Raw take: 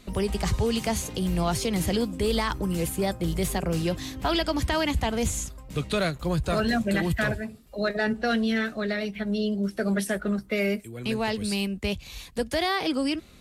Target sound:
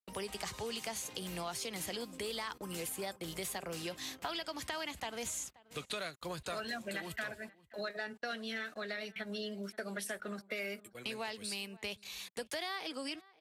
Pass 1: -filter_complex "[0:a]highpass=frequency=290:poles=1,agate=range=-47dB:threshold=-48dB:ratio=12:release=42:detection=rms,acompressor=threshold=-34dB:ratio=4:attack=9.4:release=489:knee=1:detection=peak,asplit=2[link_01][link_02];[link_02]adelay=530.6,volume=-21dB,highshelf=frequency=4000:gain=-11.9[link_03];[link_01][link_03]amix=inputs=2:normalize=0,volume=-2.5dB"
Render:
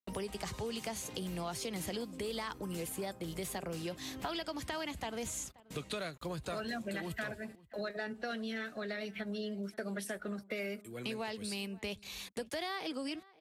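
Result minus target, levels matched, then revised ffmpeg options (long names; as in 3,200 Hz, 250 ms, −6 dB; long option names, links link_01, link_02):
250 Hz band +4.5 dB
-filter_complex "[0:a]highpass=frequency=910:poles=1,agate=range=-47dB:threshold=-48dB:ratio=12:release=42:detection=rms,acompressor=threshold=-34dB:ratio=4:attack=9.4:release=489:knee=1:detection=peak,asplit=2[link_01][link_02];[link_02]adelay=530.6,volume=-21dB,highshelf=frequency=4000:gain=-11.9[link_03];[link_01][link_03]amix=inputs=2:normalize=0,volume=-2.5dB"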